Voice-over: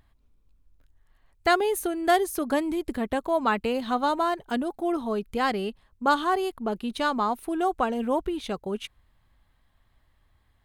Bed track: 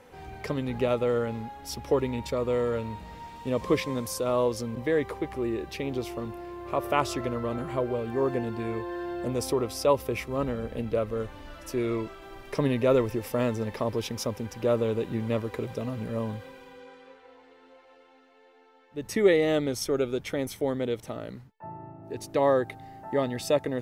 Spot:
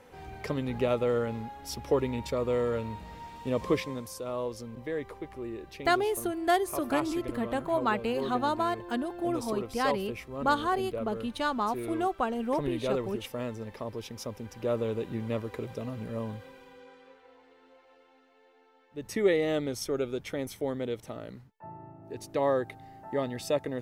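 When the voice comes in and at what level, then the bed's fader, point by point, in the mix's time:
4.40 s, -4.0 dB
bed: 3.67 s -1.5 dB
4.1 s -8.5 dB
14.05 s -8.5 dB
14.85 s -4 dB

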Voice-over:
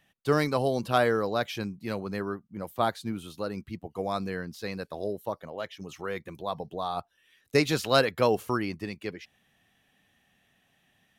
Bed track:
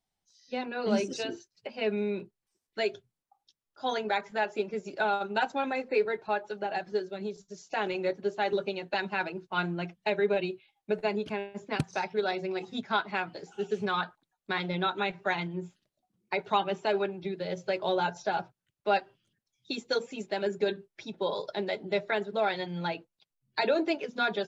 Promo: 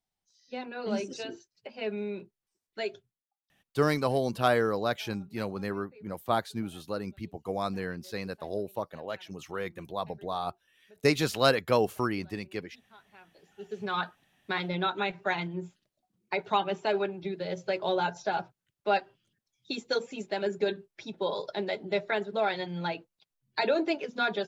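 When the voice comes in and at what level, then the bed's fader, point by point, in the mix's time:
3.50 s, -1.0 dB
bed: 3.07 s -4 dB
3.38 s -28 dB
13.02 s -28 dB
13.99 s 0 dB

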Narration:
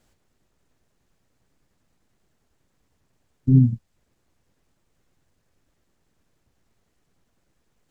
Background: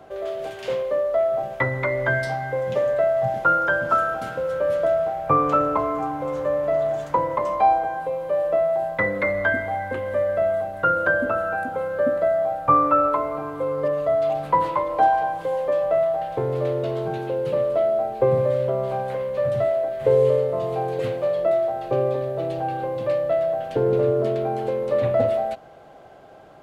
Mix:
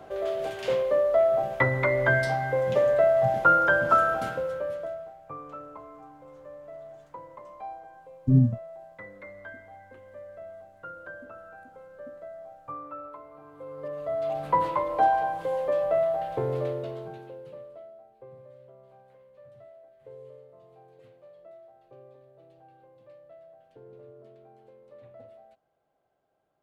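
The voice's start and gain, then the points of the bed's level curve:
4.80 s, -4.0 dB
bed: 4.26 s -0.5 dB
5.21 s -22 dB
13.28 s -22 dB
14.5 s -4 dB
16.54 s -4 dB
18.04 s -29.5 dB

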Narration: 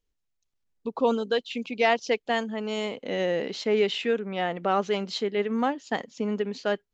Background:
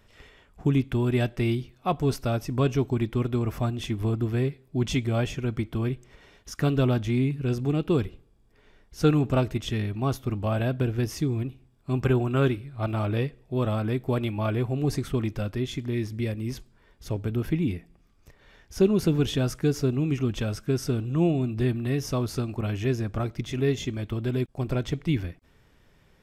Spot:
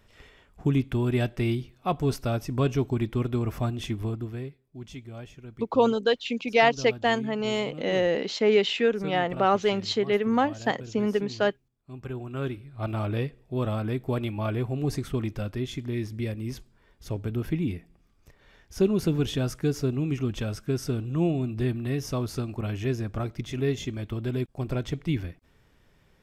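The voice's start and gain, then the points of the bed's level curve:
4.75 s, +2.5 dB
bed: 3.9 s -1 dB
4.71 s -15.5 dB
11.93 s -15.5 dB
12.89 s -2 dB

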